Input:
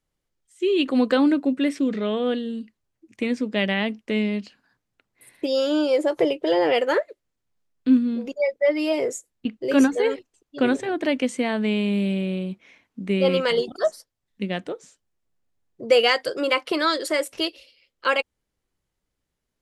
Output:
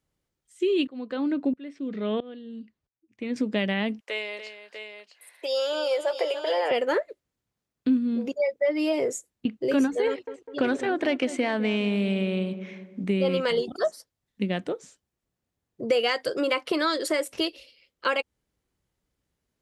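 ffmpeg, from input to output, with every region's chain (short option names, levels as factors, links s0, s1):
-filter_complex "[0:a]asettb=1/sr,asplit=3[s0][s1][s2];[s0]atrim=end=0.874[s3];[s1]atrim=start=0.87:end=3.36,asetpts=PTS-STARTPTS,afade=t=in:d=0.004:c=qsin,afade=t=out:st=2.486:d=0.004:c=qsin,lowpass=5100,aeval=exprs='val(0)*pow(10,-23*if(lt(mod(-1.5*n/s,1),2*abs(-1.5)/1000),1-mod(-1.5*n/s,1)/(2*abs(-1.5)/1000),(mod(-1.5*n/s,1)-2*abs(-1.5)/1000)/(1-2*abs(-1.5)/1000))/20)':c=same[s4];[s2]atrim=start=3.356[s5];[s3][s4]acrossfade=d=0.004:c1=hsin:c2=qsin[s6];[s6][s5]acrossfade=d=0.004:c1=qsin:c2=hsin,asettb=1/sr,asplit=3[s7][s8][s9];[s7]atrim=end=4.004[s10];[s8]atrim=start=4:end=6.71,asetpts=PTS-STARTPTS,afade=t=in:d=0.004:c=qsin,afade=t=out:st=2.706:d=0.004:c=qsin,highpass=f=560:w=0.5412,highpass=f=560:w=1.3066,aecho=1:1:290|646:0.282|0.355,atrim=end_sample=119511[s11];[s9]atrim=start=6.706[s12];[s10][s11]acrossfade=d=0.004:c1=hsin:c2=qsin[s13];[s13][s12]acrossfade=d=0.004:c1=qsin:c2=hsin,asettb=1/sr,asplit=3[s14][s15][s16];[s14]atrim=end=10.074[s17];[s15]atrim=start=10.07:end=13.04,asetpts=PTS-STARTPTS,afade=t=in:d=0.004:c=qsin,afade=t=out:st=2.966:d=0.004:c=qsin,asplit=2[s18][s19];[s19]highpass=f=720:p=1,volume=3.55,asoftclip=type=tanh:threshold=0.398[s20];[s18][s20]amix=inputs=2:normalize=0,lowpass=f=3300:p=1,volume=0.501,asplit=2[s21][s22];[s22]adelay=202,lowpass=f=1100:p=1,volume=0.211,asplit=2[s23][s24];[s24]adelay=202,lowpass=f=1100:p=1,volume=0.52,asplit=2[s25][s26];[s26]adelay=202,lowpass=f=1100:p=1,volume=0.52,asplit=2[s27][s28];[s28]adelay=202,lowpass=f=1100:p=1,volume=0.52,asplit=2[s29][s30];[s30]adelay=202,lowpass=f=1100:p=1,volume=0.52[s31];[s21][s23][s25][s27][s29][s31]amix=inputs=6:normalize=0,atrim=end_sample=130977[s32];[s16]atrim=start=13.036[s33];[s17][s32]acrossfade=d=0.004:c1=hsin:c2=qsin[s34];[s34][s33]acrossfade=d=0.004:c1=qsin:c2=hsin,highpass=42,lowshelf=f=420:g=3.5,acompressor=threshold=0.0708:ratio=2.5"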